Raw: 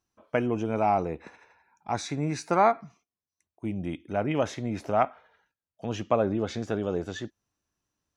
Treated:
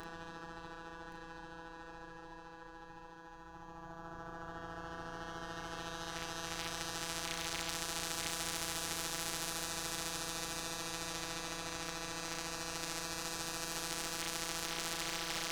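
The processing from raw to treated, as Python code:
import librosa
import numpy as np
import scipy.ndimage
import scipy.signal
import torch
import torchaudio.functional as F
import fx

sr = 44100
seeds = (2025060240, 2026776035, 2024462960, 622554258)

y = fx.lower_of_two(x, sr, delay_ms=8.3)
y = fx.highpass(y, sr, hz=46.0, slope=6)
y = fx.riaa(y, sr, side='playback')
y = fx.hum_notches(y, sr, base_hz=50, count=7)
y = fx.paulstretch(y, sr, seeds[0], factor=7.8, window_s=0.5, from_s=1.43)
y = fx.fixed_phaser(y, sr, hz=580.0, stages=6)
y = fx.robotise(y, sr, hz=166.0)
y = fx.cheby_harmonics(y, sr, harmonics=(4,), levels_db=(-30,), full_scale_db=-21.5)
y = fx.stretch_grains(y, sr, factor=1.9, grain_ms=145.0)
y = y + 10.0 ** (-13.5 / 20.0) * np.pad(y, (int(1122 * sr / 1000.0), 0))[:len(y)]
y = fx.spectral_comp(y, sr, ratio=10.0)
y = F.gain(torch.from_numpy(y), 6.5).numpy()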